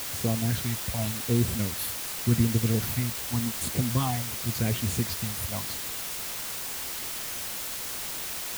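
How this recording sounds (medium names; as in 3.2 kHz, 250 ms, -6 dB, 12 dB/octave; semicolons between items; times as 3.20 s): phasing stages 6, 0.88 Hz, lowest notch 300–1500 Hz; a quantiser's noise floor 6-bit, dither triangular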